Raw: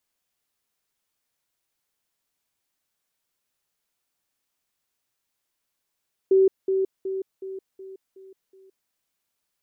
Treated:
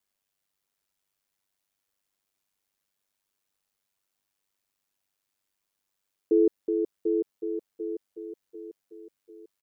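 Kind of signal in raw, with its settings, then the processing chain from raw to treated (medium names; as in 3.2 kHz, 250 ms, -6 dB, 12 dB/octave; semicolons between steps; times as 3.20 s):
level ladder 383 Hz -13.5 dBFS, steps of -6 dB, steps 7, 0.17 s 0.20 s
ring modulator 49 Hz; feedback delay 745 ms, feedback 43%, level -8 dB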